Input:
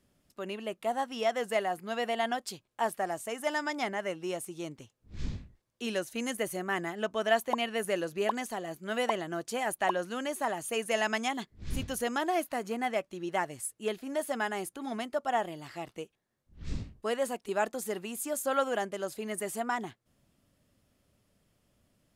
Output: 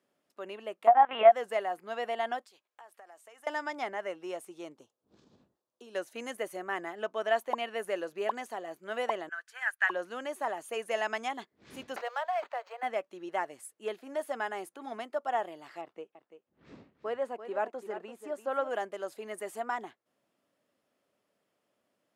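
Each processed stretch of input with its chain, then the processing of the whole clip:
0:00.87–0:01.32: flat-topped bell 1,200 Hz +13 dB 2.4 octaves + upward compression, threshold −20 dBFS + linear-prediction vocoder at 8 kHz pitch kept
0:02.45–0:03.47: high-pass filter 950 Hz 6 dB per octave + downward compressor 10 to 1, threshold −47 dBFS
0:04.74–0:05.95: parametric band 2,100 Hz −14.5 dB 0.76 octaves + downward compressor 12 to 1, threshold −41 dBFS
0:09.29–0:09.90: high-pass with resonance 1,600 Hz, resonance Q 6.6 + expander for the loud parts, over −40 dBFS
0:11.96–0:12.83: Butterworth high-pass 490 Hz 96 dB per octave + linearly interpolated sample-rate reduction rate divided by 4×
0:15.81–0:18.71: low-pass filter 1,700 Hz 6 dB per octave + single-tap delay 339 ms −11 dB
whole clip: high-pass filter 410 Hz 12 dB per octave; high-shelf EQ 2,900 Hz −11 dB

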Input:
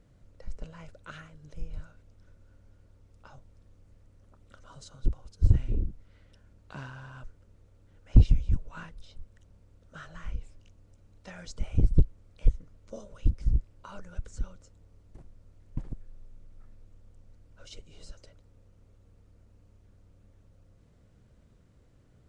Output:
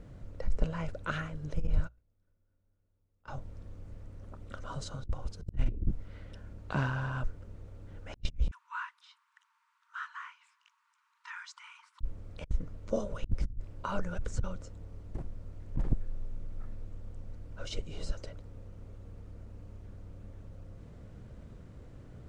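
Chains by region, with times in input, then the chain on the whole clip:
0:01.67–0:03.28: noise gate −48 dBFS, range −29 dB + mains-hum notches 60/120 Hz
0:08.51–0:12.01: linear-phase brick-wall high-pass 890 Hz + high-shelf EQ 2,700 Hz −11 dB
whole clip: high-shelf EQ 2,900 Hz −8.5 dB; compressor whose output falls as the input rises −32 dBFS, ratio −0.5; level +4 dB

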